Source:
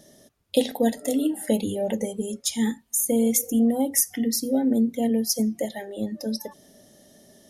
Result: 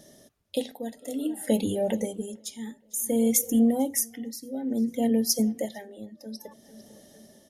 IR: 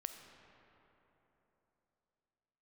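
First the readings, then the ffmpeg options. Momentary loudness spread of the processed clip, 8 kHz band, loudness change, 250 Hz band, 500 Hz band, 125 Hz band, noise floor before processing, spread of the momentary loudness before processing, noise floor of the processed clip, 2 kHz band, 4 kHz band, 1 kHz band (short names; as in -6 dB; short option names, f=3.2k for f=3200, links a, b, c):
18 LU, -3.5 dB, -2.5 dB, -3.0 dB, -3.5 dB, n/a, -59 dBFS, 10 LU, -60 dBFS, -5.5 dB, -4.5 dB, -4.0 dB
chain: -filter_complex "[0:a]asplit=2[a][b];[b]adelay=451,lowpass=f=5k:p=1,volume=-22.5dB,asplit=2[c][d];[d]adelay=451,lowpass=f=5k:p=1,volume=0.52,asplit=2[e][f];[f]adelay=451,lowpass=f=5k:p=1,volume=0.52,asplit=2[g][h];[h]adelay=451,lowpass=f=5k:p=1,volume=0.52[i];[a][c][e][g][i]amix=inputs=5:normalize=0,tremolo=f=0.57:d=0.79"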